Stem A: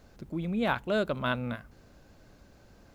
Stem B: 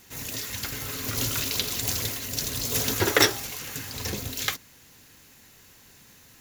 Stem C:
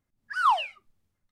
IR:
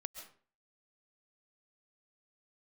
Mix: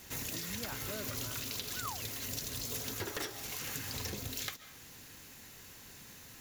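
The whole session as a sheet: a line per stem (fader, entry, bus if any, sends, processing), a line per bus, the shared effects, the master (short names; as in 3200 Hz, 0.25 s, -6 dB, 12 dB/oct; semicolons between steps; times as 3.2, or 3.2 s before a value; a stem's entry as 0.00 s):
-8.5 dB, 0.00 s, no send, dry
-1.5 dB, 0.00 s, send -7.5 dB, wavefolder -14 dBFS
-7.0 dB, 1.40 s, no send, dry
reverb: on, RT60 0.45 s, pre-delay 95 ms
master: compressor 12:1, threshold -36 dBFS, peak gain reduction 19 dB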